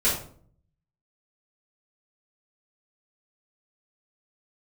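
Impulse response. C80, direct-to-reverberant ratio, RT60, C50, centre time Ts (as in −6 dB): 9.5 dB, −10.0 dB, 0.55 s, 4.5 dB, 36 ms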